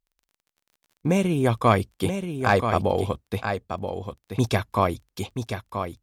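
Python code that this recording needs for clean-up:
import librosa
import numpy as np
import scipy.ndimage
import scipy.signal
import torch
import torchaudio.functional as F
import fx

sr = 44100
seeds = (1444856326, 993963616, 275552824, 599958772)

y = fx.fix_declip(x, sr, threshold_db=-6.5)
y = fx.fix_declick_ar(y, sr, threshold=6.5)
y = fx.fix_echo_inverse(y, sr, delay_ms=980, level_db=-7.5)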